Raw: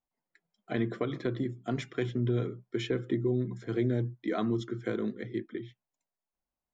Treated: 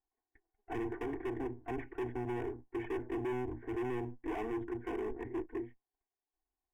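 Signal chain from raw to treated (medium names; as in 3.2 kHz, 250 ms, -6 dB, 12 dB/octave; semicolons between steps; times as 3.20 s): comb filter that takes the minimum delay 2.7 ms; low-pass 1.7 kHz 24 dB/octave; overload inside the chain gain 36 dB; static phaser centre 860 Hz, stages 8; trim +3 dB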